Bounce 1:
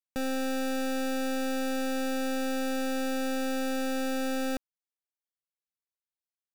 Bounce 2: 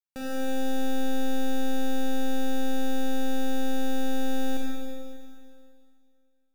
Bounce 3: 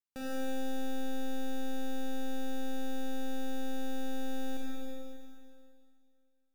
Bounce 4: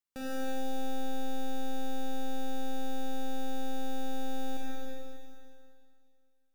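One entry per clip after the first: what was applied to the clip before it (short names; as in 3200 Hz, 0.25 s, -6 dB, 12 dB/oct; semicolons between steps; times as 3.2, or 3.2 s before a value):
Schroeder reverb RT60 2.3 s, combs from 31 ms, DRR -2.5 dB; gain -5.5 dB
compressor 3:1, threshold -23 dBFS, peak gain reduction 4 dB; gain -5 dB
non-linear reverb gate 0.3 s rising, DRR 9.5 dB; gain +1 dB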